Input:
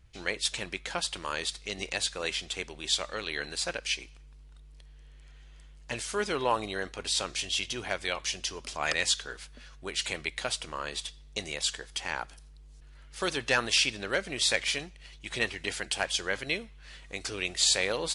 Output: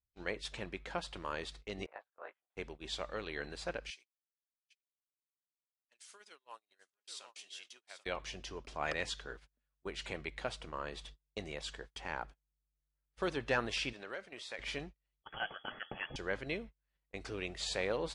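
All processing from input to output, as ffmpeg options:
-filter_complex "[0:a]asettb=1/sr,asplit=3[a][b][c];[a]atrim=end=1.864[d];[b]atrim=start=1.86:end=2.56,asetpts=PTS-STARTPTS,afade=t=in:d=0.004:c=qsin,afade=t=out:st=0.696:d=0.004:c=qsin,tremolo=f=140:d=0.667,asuperpass=centerf=1000:order=4:qfactor=1.1,asplit=2[e][f];[f]adelay=19,volume=-5dB[g];[e][g]amix=inputs=2:normalize=0,atrim=end_sample=30870[h];[c]atrim=start=2.556[i];[d][h]acrossfade=d=0.004:c1=hsin:c2=qsin[j];[j][i]acrossfade=d=0.004:c1=qsin:c2=hsin,asettb=1/sr,asplit=3[k][l][m];[k]atrim=end=3.904[n];[l]atrim=start=3.9:end=8.06,asetpts=PTS-STARTPTS,afade=t=in:d=0.004:c=qsin,afade=t=out:st=4.156:d=0.004:c=qsin,highpass=190,aderivative,aecho=1:1:788:0.335,atrim=end_sample=183456[o];[m]atrim=start=8.056[p];[n][o]acrossfade=d=0.004:c1=hsin:c2=qsin[q];[q][p]acrossfade=d=0.004:c1=qsin:c2=hsin,asettb=1/sr,asplit=3[r][s][t];[r]atrim=end=13.934[u];[s]atrim=start=13.93:end=14.59,asetpts=PTS-STARTPTS,afade=t=in:d=0.004:c=qsin,afade=t=out:st=0.656:d=0.004:c=qsin,highpass=f=690:p=1,acompressor=threshold=-36dB:ratio=2:attack=3.2:release=140:knee=1:detection=peak[v];[t]atrim=start=14.586[w];[u][v]acrossfade=d=0.004:c1=hsin:c2=qsin[x];[x][w]acrossfade=d=0.004:c1=qsin:c2=hsin,asettb=1/sr,asplit=3[y][z][aa];[y]atrim=end=15.224[ab];[z]atrim=start=15.22:end=16.16,asetpts=PTS-STARTPTS,afade=t=in:d=0.004:c=qsin,afade=t=out:st=0.936:d=0.004:c=qsin,bandreject=f=2.4k:w=10,volume=21.5dB,asoftclip=hard,volume=-21.5dB,lowpass=f=2.9k:t=q:w=0.5098,lowpass=f=2.9k:t=q:w=0.6013,lowpass=f=2.9k:t=q:w=0.9,lowpass=f=2.9k:t=q:w=2.563,afreqshift=-3400[ac];[aa]atrim=start=16.156[ad];[ab][ac]acrossfade=d=0.004:c1=hsin:c2=qsin[ae];[ae][ad]acrossfade=d=0.004:c1=qsin:c2=hsin,agate=range=-33dB:threshold=-42dB:ratio=16:detection=peak,lowpass=f=1.1k:p=1,volume=-2.5dB"

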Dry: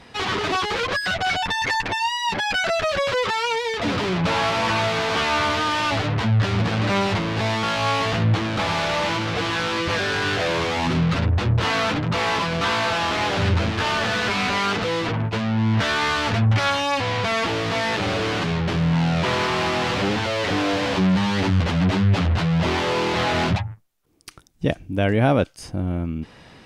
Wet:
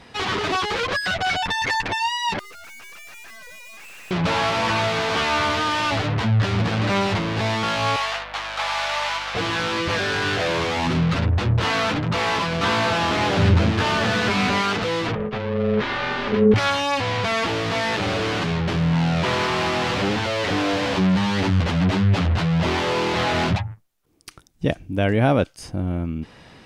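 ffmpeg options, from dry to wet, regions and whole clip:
-filter_complex "[0:a]asettb=1/sr,asplit=3[a][b][c];[a]atrim=end=2.394[d];[b]atrim=start=2.39:end=4.11,asetpts=PTS-STARTPTS,afade=t=in:d=0.004:c=qsin,afade=t=out:st=1.716:d=0.004:c=qsin,lowpass=f=2.5k:t=q:w=0.5098,lowpass=f=2.5k:t=q:w=0.6013,lowpass=f=2.5k:t=q:w=0.9,lowpass=f=2.5k:t=q:w=2.563,afreqshift=-2900,aeval=exprs='(tanh(126*val(0)+0.75)-tanh(0.75))/126':c=same[e];[c]atrim=start=4.106[f];[d][e]acrossfade=d=0.004:c1=hsin:c2=qsin[g];[g][f]acrossfade=d=0.004:c1=qsin:c2=hsin,asettb=1/sr,asplit=3[h][i][j];[h]atrim=end=7.964[k];[i]atrim=start=7.96:end=9.35,asetpts=PTS-STARTPTS,afade=t=in:d=0.004:c=qsin,afade=t=out:st=1.386:d=0.004:c=qsin,highpass=f=690:w=0.5412,highpass=f=690:w=1.3066,aeval=exprs='val(0)+0.00501*(sin(2*PI*50*n/s)+sin(2*PI*2*50*n/s)/2+sin(2*PI*3*50*n/s)/3+sin(2*PI*4*50*n/s)/4+sin(2*PI*5*50*n/s)/5)':c=same[l];[j]atrim=start=9.346[m];[k][l]acrossfade=d=0.004:c1=hsin:c2=qsin[n];[n][m]acrossfade=d=0.004:c1=qsin:c2=hsin,asettb=1/sr,asplit=3[o][p][q];[o]atrim=end=12.634[r];[p]atrim=start=12.63:end=14.62,asetpts=PTS-STARTPTS,afade=t=in:d=0.004:c=qsin,afade=t=out:st=1.986:d=0.004:c=qsin,highpass=f=140:p=1,lowshelf=f=320:g=10[s];[q]atrim=start=14.616[t];[r][s]acrossfade=d=0.004:c1=hsin:c2=qsin[u];[u][t]acrossfade=d=0.004:c1=qsin:c2=hsin,asettb=1/sr,asplit=3[v][w][x];[v]atrim=end=15.154[y];[w]atrim=start=15.15:end=16.54,asetpts=PTS-STARTPTS,afade=t=in:d=0.004:c=qsin,afade=t=out:st=1.386:d=0.004:c=qsin,lowpass=3.4k,asubboost=boost=6.5:cutoff=140,aeval=exprs='val(0)*sin(2*PI*320*n/s)':c=same[z];[x]atrim=start=16.536[aa];[y][z]acrossfade=d=0.004:c1=hsin:c2=qsin[ab];[ab][aa]acrossfade=d=0.004:c1=qsin:c2=hsin"

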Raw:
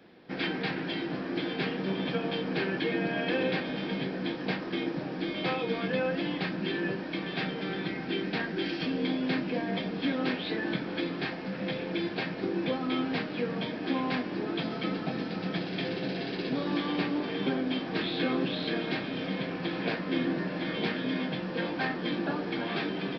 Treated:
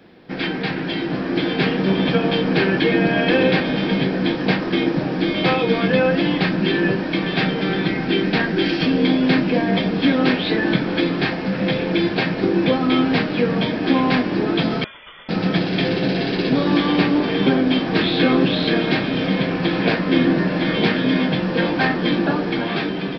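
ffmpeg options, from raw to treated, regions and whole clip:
-filter_complex "[0:a]asettb=1/sr,asplit=3[a][b][c];[a]atrim=end=14.844[d];[b]atrim=start=14.84:end=15.29,asetpts=PTS-STARTPTS,afade=t=in:d=0.004:c=qsin,afade=t=out:st=0.446:d=0.004:c=qsin,aderivative,lowpass=f=3.1k:t=q:w=0.5098,lowpass=f=3.1k:t=q:w=0.6013,lowpass=f=3.1k:t=q:w=0.9,lowpass=f=3.1k:t=q:w=2.563,afreqshift=-3700[e];[c]atrim=start=15.286[f];[d][e]acrossfade=d=0.004:c1=hsin:c2=qsin[g];[g][f]acrossfade=d=0.004:c1=qsin:c2=hsin,lowshelf=f=98:g=9,dynaudnorm=f=340:g=7:m=5dB,volume=7dB"

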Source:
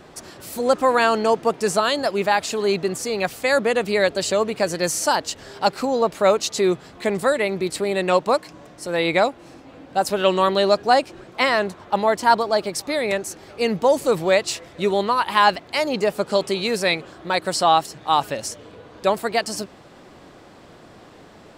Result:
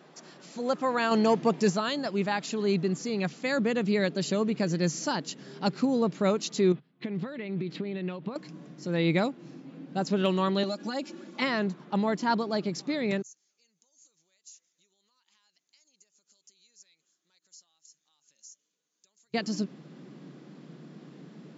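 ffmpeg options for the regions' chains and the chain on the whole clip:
-filter_complex "[0:a]asettb=1/sr,asplit=3[a][b][c];[a]atrim=end=1.114[d];[b]atrim=start=1.11:end=1.7,asetpts=PTS-STARTPTS,afade=t=in:d=0.004:c=qsin,afade=t=out:st=0.586:d=0.004:c=qsin,equalizer=f=1.4k:w=5.4:g=-6,acontrast=49[e];[c]atrim=start=1.696[f];[d][e]acrossfade=d=0.004:c1=hsin:c2=qsin[g];[g][f]acrossfade=d=0.004:c1=qsin:c2=hsin,asettb=1/sr,asplit=3[h][i][j];[h]atrim=end=6.724[k];[i]atrim=start=6.72:end=8.36,asetpts=PTS-STARTPTS,afade=t=in:d=0.004:c=qsin,afade=t=out:st=1.636:d=0.004:c=qsin,highshelf=f=4.9k:t=q:w=1.5:g=-14,agate=range=-22dB:threshold=-38dB:ratio=16:release=100:detection=peak,acompressor=threshold=-26dB:ratio=10:attack=3.2:release=140:knee=1:detection=peak[l];[j]atrim=start=8.356[m];[k][l]acrossfade=d=0.004:c1=hsin:c2=qsin[n];[n][m]acrossfade=d=0.004:c1=qsin:c2=hsin,asettb=1/sr,asplit=3[o][p][q];[o]atrim=end=10.634[r];[p]atrim=start=10.63:end=11.42,asetpts=PTS-STARTPTS,afade=t=in:d=0.004:c=qsin,afade=t=out:st=0.786:d=0.004:c=qsin,equalizer=f=13k:t=o:w=1.3:g=14.5,acompressor=threshold=-22dB:ratio=5:attack=3.2:release=140:knee=1:detection=peak,aecho=1:1:3.5:0.91,atrim=end_sample=34839[s];[q]atrim=start=11.416[t];[r][s]acrossfade=d=0.004:c1=hsin:c2=qsin[u];[u][t]acrossfade=d=0.004:c1=qsin:c2=hsin,asettb=1/sr,asplit=3[v][w][x];[v]atrim=end=13.224[y];[w]atrim=start=13.22:end=19.34,asetpts=PTS-STARTPTS,afade=t=in:d=0.004:c=qsin,afade=t=out:st=6.116:d=0.004:c=qsin,acompressor=threshold=-27dB:ratio=8:attack=3.2:release=140:knee=1:detection=peak,bandpass=f=6.6k:t=q:w=7.4[z];[x]atrim=start=19.336[aa];[y][z]acrossfade=d=0.004:c1=hsin:c2=qsin[ab];[ab][aa]acrossfade=d=0.004:c1=qsin:c2=hsin,afftfilt=real='re*between(b*sr/4096,130,7500)':imag='im*between(b*sr/4096,130,7500)':win_size=4096:overlap=0.75,asubboost=boost=8:cutoff=240,volume=-9dB"

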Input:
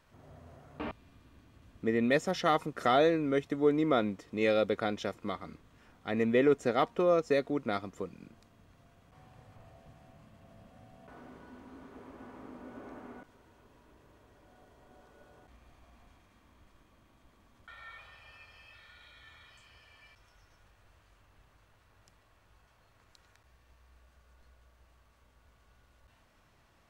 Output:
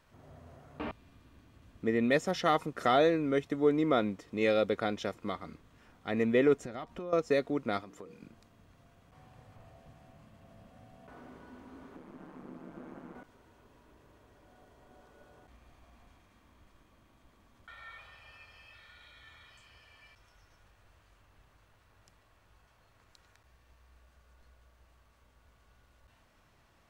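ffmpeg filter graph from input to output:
-filter_complex "[0:a]asettb=1/sr,asplit=3[a][b][c];[a]atrim=end=6.644[d];[b]atrim=start=6.64:end=7.13,asetpts=PTS-STARTPTS,afade=t=in:d=0.004:c=qsin,afade=t=out:st=0.486:d=0.004:c=qsin,lowshelf=f=120:g=11,bandreject=f=460:w=5.8,acompressor=threshold=-38dB:ratio=5:attack=3.2:release=140:knee=1:detection=peak[e];[c]atrim=start=7.126[f];[d][e]acrossfade=d=0.004:c1=hsin:c2=qsin[g];[g][f]acrossfade=d=0.004:c1=qsin:c2=hsin,asettb=1/sr,asplit=3[h][i][j];[h]atrim=end=7.814[k];[i]atrim=start=7.81:end=8.22,asetpts=PTS-STARTPTS,afade=t=in:d=0.004:c=qsin,afade=t=out:st=0.406:d=0.004:c=qsin,lowshelf=f=140:g=-10,bandreject=f=60:t=h:w=6,bandreject=f=120:t=h:w=6,bandreject=f=180:t=h:w=6,bandreject=f=240:t=h:w=6,bandreject=f=300:t=h:w=6,bandreject=f=360:t=h:w=6,bandreject=f=420:t=h:w=6,bandreject=f=480:t=h:w=6,acompressor=threshold=-44dB:ratio=3:attack=3.2:release=140:knee=1:detection=peak[l];[j]atrim=start=8.216[m];[k][l]acrossfade=d=0.004:c1=hsin:c2=qsin[n];[n][m]acrossfade=d=0.004:c1=qsin:c2=hsin,asettb=1/sr,asplit=3[o][p][q];[o]atrim=end=11.964[r];[p]atrim=start=11.96:end=13.15,asetpts=PTS-STARTPTS,afade=t=in:d=0.004:c=qsin,afade=t=out:st=1.186:d=0.004:c=qsin,aeval=exprs='val(0)*sin(2*PI*73*n/s)':c=same,equalizer=f=250:t=o:w=0.31:g=11.5[s];[q]atrim=start=13.146[t];[r][s]acrossfade=d=0.004:c1=hsin:c2=qsin[u];[u][t]acrossfade=d=0.004:c1=qsin:c2=hsin"

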